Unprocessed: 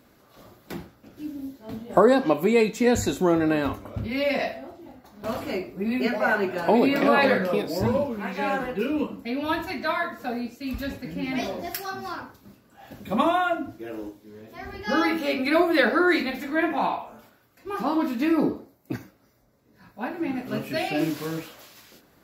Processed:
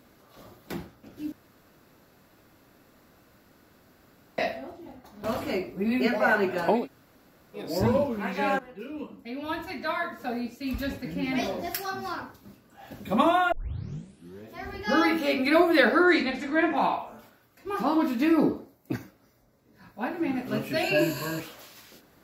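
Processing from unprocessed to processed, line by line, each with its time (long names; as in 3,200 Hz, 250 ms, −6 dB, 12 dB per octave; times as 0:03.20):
0:01.32–0:04.38: fill with room tone
0:06.76–0:07.65: fill with room tone, crossfade 0.24 s
0:08.59–0:10.77: fade in, from −18 dB
0:13.52: tape start 0.91 s
0:16.03–0:16.76: low-pass filter 9,100 Hz 24 dB per octave
0:20.83–0:21.40: EQ curve with evenly spaced ripples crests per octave 1.4, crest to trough 15 dB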